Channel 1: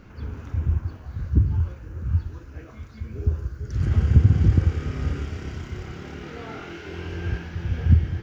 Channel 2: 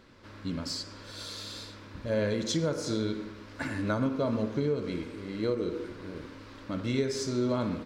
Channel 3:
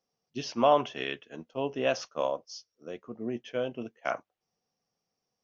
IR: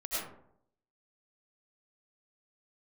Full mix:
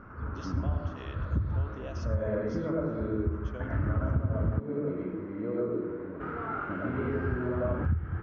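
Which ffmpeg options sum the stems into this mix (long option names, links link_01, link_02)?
-filter_complex "[0:a]lowpass=frequency=1300:width_type=q:width=4.6,volume=-4dB,asplit=3[link_01][link_02][link_03];[link_01]atrim=end=4.6,asetpts=PTS-STARTPTS,afade=type=out:start_time=4.596:duration=0.004:curve=hsin[link_04];[link_02]atrim=start=4.6:end=6.2,asetpts=PTS-STARTPTS,volume=0[link_05];[link_03]atrim=start=6.2,asetpts=PTS-STARTPTS,afade=type=in:duration=0.004:curve=hsin[link_06];[link_04][link_05][link_06]concat=n=3:v=0:a=1[link_07];[1:a]highpass=53,lowpass=frequency=1700:width=0.5412,lowpass=frequency=1700:width=1.3066,volume=-2.5dB,asplit=2[link_08][link_09];[link_09]volume=-3dB[link_10];[2:a]volume=-7.5dB,asplit=2[link_11][link_12];[link_12]volume=-23.5dB[link_13];[link_08][link_11]amix=inputs=2:normalize=0,equalizer=frequency=2600:width_type=o:width=0.87:gain=-8,acompressor=threshold=-40dB:ratio=6,volume=0dB[link_14];[3:a]atrim=start_sample=2205[link_15];[link_10][link_13]amix=inputs=2:normalize=0[link_16];[link_16][link_15]afir=irnorm=-1:irlink=0[link_17];[link_07][link_14][link_17]amix=inputs=3:normalize=0,acompressor=threshold=-25dB:ratio=5"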